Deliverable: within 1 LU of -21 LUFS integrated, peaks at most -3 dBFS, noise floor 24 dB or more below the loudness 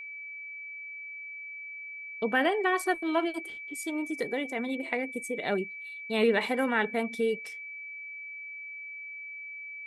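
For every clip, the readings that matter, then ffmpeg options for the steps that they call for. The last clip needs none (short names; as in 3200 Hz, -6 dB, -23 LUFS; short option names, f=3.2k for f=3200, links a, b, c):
steady tone 2300 Hz; tone level -39 dBFS; loudness -32.0 LUFS; peak -13.0 dBFS; loudness target -21.0 LUFS
-> -af "bandreject=f=2.3k:w=30"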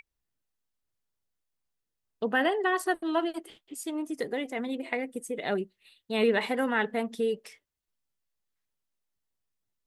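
steady tone none; loudness -30.0 LUFS; peak -13.0 dBFS; loudness target -21.0 LUFS
-> -af "volume=9dB"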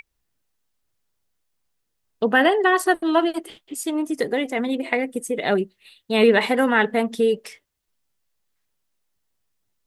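loudness -21.0 LUFS; peak -4.0 dBFS; noise floor -76 dBFS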